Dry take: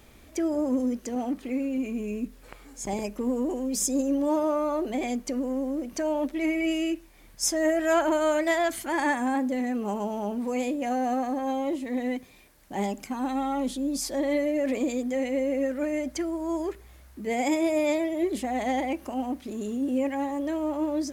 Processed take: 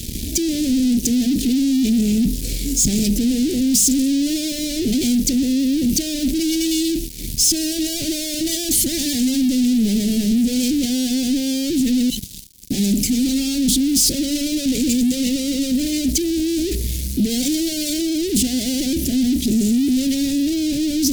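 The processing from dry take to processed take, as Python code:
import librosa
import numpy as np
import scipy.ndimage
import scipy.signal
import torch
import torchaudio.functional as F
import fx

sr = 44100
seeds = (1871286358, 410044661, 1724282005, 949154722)

y = fx.spec_repair(x, sr, seeds[0], start_s=12.11, length_s=0.51, low_hz=230.0, high_hz=2600.0, source='after')
y = fx.fuzz(y, sr, gain_db=48.0, gate_db=-54.0)
y = scipy.signal.sosfilt(scipy.signal.cheby1(2, 1.0, [240.0, 4500.0], 'bandstop', fs=sr, output='sos'), y)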